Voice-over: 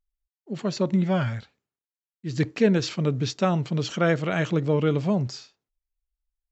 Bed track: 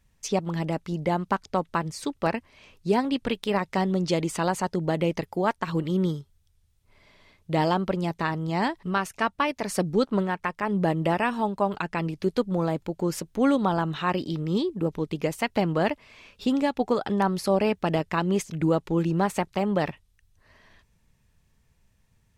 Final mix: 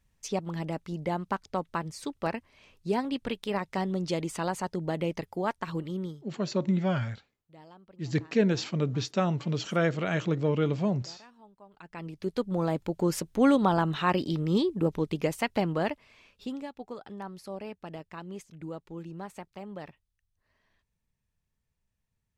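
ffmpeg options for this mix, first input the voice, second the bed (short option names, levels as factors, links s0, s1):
-filter_complex "[0:a]adelay=5750,volume=0.631[s0];[1:a]volume=15,afade=t=out:st=5.67:d=0.77:silence=0.0668344,afade=t=in:st=11.73:d=1.23:silence=0.0354813,afade=t=out:st=14.95:d=1.76:silence=0.149624[s1];[s0][s1]amix=inputs=2:normalize=0"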